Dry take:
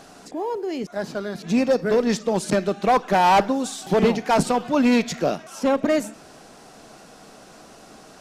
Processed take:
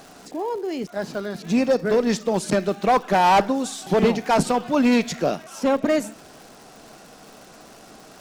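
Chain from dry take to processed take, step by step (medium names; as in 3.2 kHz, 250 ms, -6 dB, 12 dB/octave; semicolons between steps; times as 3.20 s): crackle 210 per s -37 dBFS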